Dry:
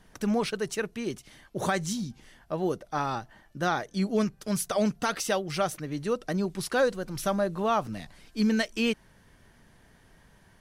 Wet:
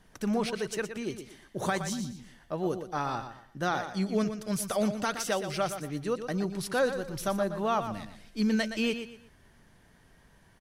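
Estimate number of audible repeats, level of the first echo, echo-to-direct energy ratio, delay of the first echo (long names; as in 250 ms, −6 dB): 3, −9.5 dB, −9.0 dB, 119 ms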